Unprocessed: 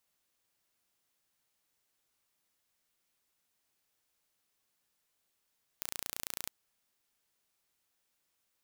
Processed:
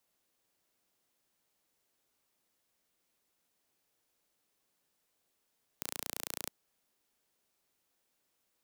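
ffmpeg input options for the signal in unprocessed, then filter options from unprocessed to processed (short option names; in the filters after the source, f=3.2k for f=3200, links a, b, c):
-f lavfi -i "aevalsrc='0.316*eq(mod(n,1521),0)':d=0.68:s=44100"
-filter_complex "[0:a]acrossover=split=180|760|5300[a][b][c][d];[b]acontrast=54[e];[a][e][c][d]amix=inputs=4:normalize=0"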